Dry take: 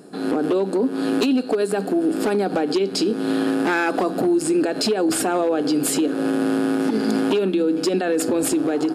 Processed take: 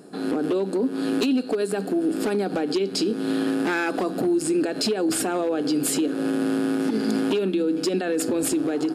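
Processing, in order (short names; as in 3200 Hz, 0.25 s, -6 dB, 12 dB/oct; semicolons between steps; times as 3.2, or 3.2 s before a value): dynamic EQ 830 Hz, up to -4 dB, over -31 dBFS, Q 0.83; gain -2 dB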